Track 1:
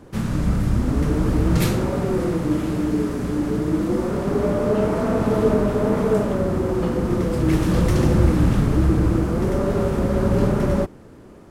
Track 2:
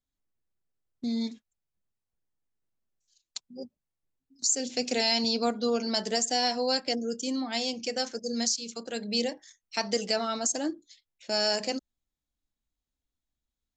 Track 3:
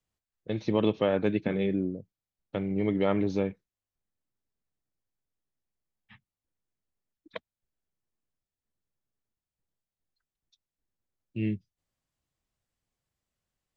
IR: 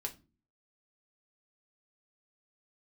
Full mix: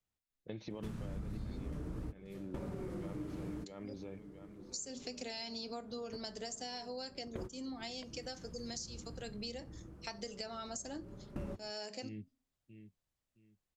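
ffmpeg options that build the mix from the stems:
-filter_complex "[0:a]lowshelf=f=190:g=4.5,adelay=700,volume=0.299[s0];[1:a]adelay=300,volume=0.251,asplit=2[s1][s2];[s2]volume=0.531[s3];[2:a]alimiter=limit=0.0668:level=0:latency=1:release=57,volume=0.531,asplit=3[s4][s5][s6];[s5]volume=0.501[s7];[s6]apad=whole_len=538116[s8];[s0][s8]sidechaingate=range=0.0562:threshold=0.00158:ratio=16:detection=peak[s9];[3:a]atrim=start_sample=2205[s10];[s3][s10]afir=irnorm=-1:irlink=0[s11];[s7]aecho=0:1:666|1332|1998|2664:1|0.23|0.0529|0.0122[s12];[s9][s1][s4][s11][s12]amix=inputs=5:normalize=0,acompressor=threshold=0.01:ratio=6"

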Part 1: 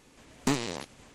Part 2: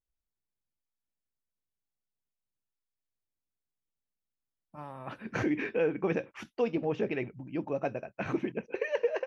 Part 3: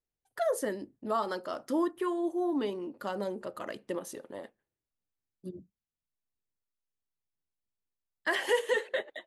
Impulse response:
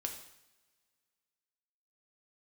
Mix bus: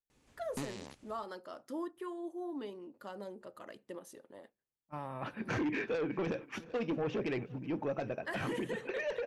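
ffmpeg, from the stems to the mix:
-filter_complex "[0:a]equalizer=f=64:w=0.59:g=7,adelay=100,volume=0.224[s0];[1:a]agate=range=0.0562:threshold=0.00447:ratio=16:detection=peak,aeval=exprs='0.133*(cos(1*acos(clip(val(0)/0.133,-1,1)))-cos(1*PI/2))+0.0237*(cos(3*acos(clip(val(0)/0.133,-1,1)))-cos(3*PI/2))+0.0299*(cos(5*acos(clip(val(0)/0.133,-1,1)))-cos(5*PI/2))':c=same,adelay=150,volume=0.794,asplit=2[s1][s2];[s2]volume=0.0708[s3];[2:a]volume=0.299[s4];[s3]aecho=0:1:378|756|1134|1512|1890|2268|2646|3024:1|0.56|0.314|0.176|0.0983|0.0551|0.0308|0.0173[s5];[s0][s1][s4][s5]amix=inputs=4:normalize=0,alimiter=level_in=1.78:limit=0.0631:level=0:latency=1:release=41,volume=0.562"

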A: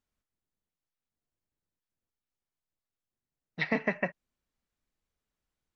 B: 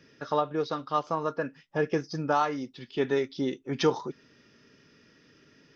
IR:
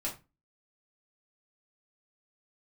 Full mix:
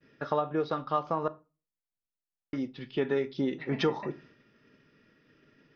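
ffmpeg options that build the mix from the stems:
-filter_complex "[0:a]volume=0.178,asplit=2[s0][s1];[s1]volume=0.531[s2];[1:a]agate=range=0.0224:threshold=0.00224:ratio=3:detection=peak,volume=1.19,asplit=3[s3][s4][s5];[s3]atrim=end=1.28,asetpts=PTS-STARTPTS,afade=t=out:st=1.276:d=0.004:c=hsin[s6];[s4]atrim=start=1.28:end=2.53,asetpts=PTS-STARTPTS,volume=0[s7];[s5]atrim=start=2.53,asetpts=PTS-STARTPTS,afade=t=in:d=0.004:c=hsin[s8];[s6][s7][s8]concat=n=3:v=0:a=1,asplit=2[s9][s10];[s10]volume=0.211[s11];[2:a]atrim=start_sample=2205[s12];[s2][s11]amix=inputs=2:normalize=0[s13];[s13][s12]afir=irnorm=-1:irlink=0[s14];[s0][s9][s14]amix=inputs=3:normalize=0,lowpass=3100,acompressor=threshold=0.0501:ratio=2.5"

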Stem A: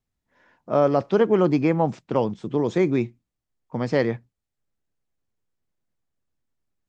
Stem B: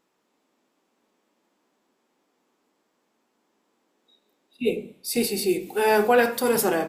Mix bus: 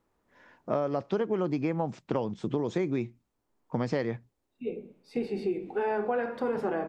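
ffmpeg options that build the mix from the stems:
-filter_complex "[0:a]volume=1.26,asplit=2[s0][s1];[1:a]lowpass=1600,volume=0.794[s2];[s1]apad=whole_len=303436[s3];[s2][s3]sidechaincompress=threshold=0.0251:ratio=5:attack=21:release=980[s4];[s0][s4]amix=inputs=2:normalize=0,acompressor=threshold=0.0501:ratio=6"

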